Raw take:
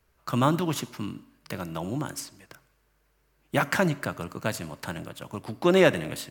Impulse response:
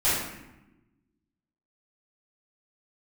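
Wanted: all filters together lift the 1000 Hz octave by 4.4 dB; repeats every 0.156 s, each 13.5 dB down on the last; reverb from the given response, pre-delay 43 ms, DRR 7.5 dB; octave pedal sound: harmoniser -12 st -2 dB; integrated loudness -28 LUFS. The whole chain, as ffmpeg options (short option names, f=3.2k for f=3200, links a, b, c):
-filter_complex "[0:a]equalizer=f=1k:t=o:g=5.5,aecho=1:1:156|312:0.211|0.0444,asplit=2[a][b];[1:a]atrim=start_sample=2205,adelay=43[c];[b][c]afir=irnorm=-1:irlink=0,volume=-21.5dB[d];[a][d]amix=inputs=2:normalize=0,asplit=2[e][f];[f]asetrate=22050,aresample=44100,atempo=2,volume=-2dB[g];[e][g]amix=inputs=2:normalize=0,volume=-4.5dB"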